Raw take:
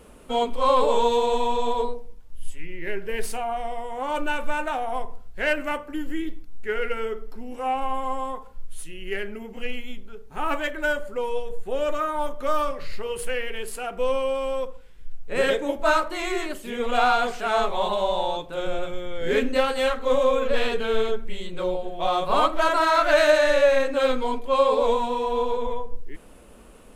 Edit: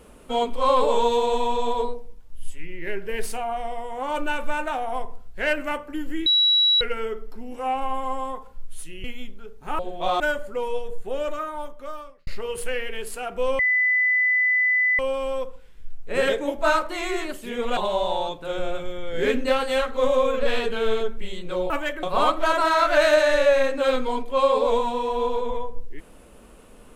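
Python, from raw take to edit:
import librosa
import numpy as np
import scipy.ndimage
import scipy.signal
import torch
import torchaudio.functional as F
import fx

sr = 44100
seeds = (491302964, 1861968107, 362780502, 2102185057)

y = fx.edit(x, sr, fx.bleep(start_s=6.26, length_s=0.55, hz=3900.0, db=-15.0),
    fx.cut(start_s=9.04, length_s=0.69),
    fx.swap(start_s=10.48, length_s=0.33, other_s=21.78, other_length_s=0.41),
    fx.fade_out_span(start_s=11.52, length_s=1.36),
    fx.insert_tone(at_s=14.2, length_s=1.4, hz=2000.0, db=-17.0),
    fx.cut(start_s=16.98, length_s=0.87), tone=tone)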